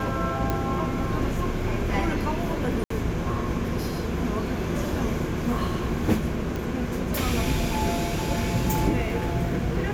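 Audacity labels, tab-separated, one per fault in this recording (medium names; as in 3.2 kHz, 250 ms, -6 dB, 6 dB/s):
0.500000	0.500000	pop -12 dBFS
2.840000	2.900000	dropout 64 ms
6.560000	6.560000	pop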